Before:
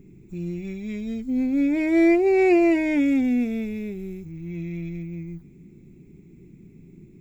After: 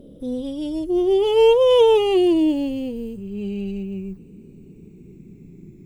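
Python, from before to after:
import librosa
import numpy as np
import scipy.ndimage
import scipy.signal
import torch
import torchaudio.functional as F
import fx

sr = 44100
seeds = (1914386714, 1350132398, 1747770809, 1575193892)

y = fx.speed_glide(x, sr, from_pct=147, to_pct=99)
y = fx.peak_eq(y, sr, hz=2000.0, db=-4.5, octaves=2.1)
y = y * librosa.db_to_amplitude(4.5)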